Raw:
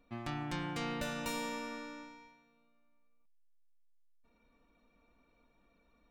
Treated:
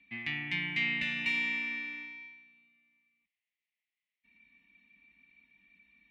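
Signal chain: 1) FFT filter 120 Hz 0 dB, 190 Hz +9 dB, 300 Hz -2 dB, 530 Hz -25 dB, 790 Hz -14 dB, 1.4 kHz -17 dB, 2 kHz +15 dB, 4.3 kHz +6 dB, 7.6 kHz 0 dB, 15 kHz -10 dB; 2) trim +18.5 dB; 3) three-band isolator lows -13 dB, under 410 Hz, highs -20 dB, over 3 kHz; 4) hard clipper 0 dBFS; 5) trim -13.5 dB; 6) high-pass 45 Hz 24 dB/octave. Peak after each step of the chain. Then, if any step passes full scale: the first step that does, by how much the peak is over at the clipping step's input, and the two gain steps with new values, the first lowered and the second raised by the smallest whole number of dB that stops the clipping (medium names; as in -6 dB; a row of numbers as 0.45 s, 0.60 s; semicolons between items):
-20.0 dBFS, -1.5 dBFS, -5.0 dBFS, -5.0 dBFS, -18.5 dBFS, -18.5 dBFS; nothing clips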